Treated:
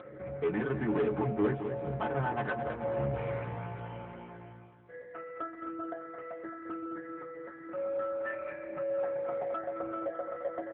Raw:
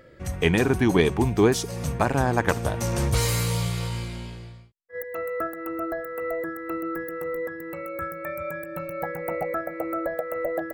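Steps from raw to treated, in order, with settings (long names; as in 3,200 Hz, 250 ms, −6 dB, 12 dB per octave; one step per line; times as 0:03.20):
low-pass filter 1,800 Hz 24 dB per octave
low-shelf EQ 130 Hz −11.5 dB
upward compression, threshold −32 dBFS
stiff-string resonator 64 Hz, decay 0.35 s, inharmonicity 0.03
soft clipping −29 dBFS, distortion −10 dB
on a send: repeating echo 216 ms, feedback 55%, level −9.5 dB
on the sum: level +4.5 dB
AMR narrowband 7.95 kbit/s 8,000 Hz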